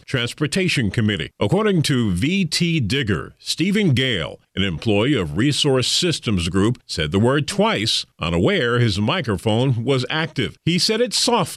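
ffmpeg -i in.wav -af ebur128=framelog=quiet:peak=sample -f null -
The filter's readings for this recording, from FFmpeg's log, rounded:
Integrated loudness:
  I:         -19.3 LUFS
  Threshold: -29.3 LUFS
Loudness range:
  LRA:         1.0 LU
  Threshold: -39.3 LUFS
  LRA low:   -19.8 LUFS
  LRA high:  -18.8 LUFS
Sample peak:
  Peak:       -7.6 dBFS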